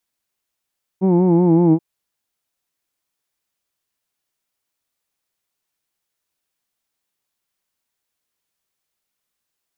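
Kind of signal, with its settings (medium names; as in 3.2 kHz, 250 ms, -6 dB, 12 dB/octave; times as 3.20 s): formant-synthesis vowel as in who'd, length 0.78 s, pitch 184 Hz, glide -2 st, vibrato depth 0.8 st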